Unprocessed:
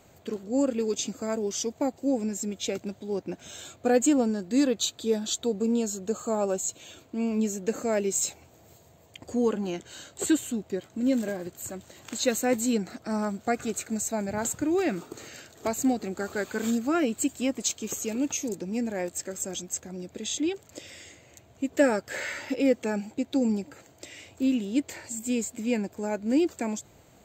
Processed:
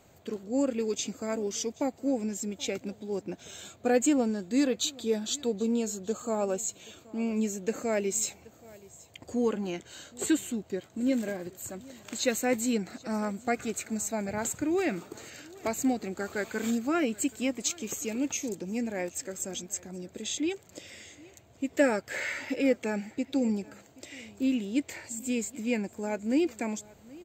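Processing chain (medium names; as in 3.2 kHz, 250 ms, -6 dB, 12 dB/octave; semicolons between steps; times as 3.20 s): dynamic bell 2.2 kHz, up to +5 dB, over -51 dBFS, Q 2.6; on a send: delay 777 ms -22.5 dB; on the sum: trim -2.5 dB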